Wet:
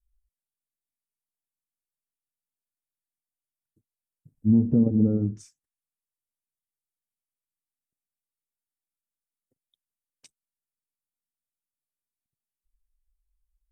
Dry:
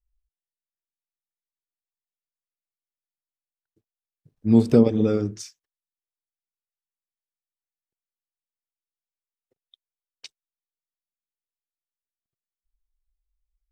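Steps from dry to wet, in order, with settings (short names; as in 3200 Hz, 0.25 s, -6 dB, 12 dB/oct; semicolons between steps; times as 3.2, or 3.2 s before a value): treble ducked by the level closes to 730 Hz, closed at -17.5 dBFS; EQ curve 270 Hz 0 dB, 380 Hz -11 dB, 550 Hz -10 dB, 4600 Hz -20 dB, 8500 Hz 0 dB; limiter -14 dBFS, peak gain reduction 7 dB; gain +2.5 dB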